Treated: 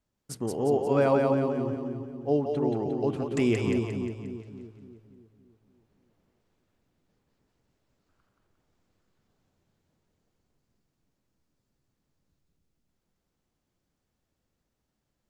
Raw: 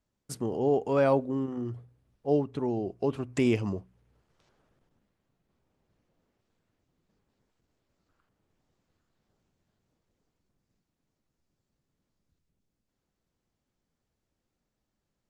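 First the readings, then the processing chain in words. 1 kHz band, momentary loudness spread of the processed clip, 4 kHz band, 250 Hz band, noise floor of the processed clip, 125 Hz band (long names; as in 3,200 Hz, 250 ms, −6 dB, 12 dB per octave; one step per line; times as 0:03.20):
+2.0 dB, 16 LU, +2.0 dB, +2.5 dB, −81 dBFS, +2.5 dB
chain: echo with a time of its own for lows and highs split 410 Hz, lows 286 ms, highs 177 ms, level −3 dB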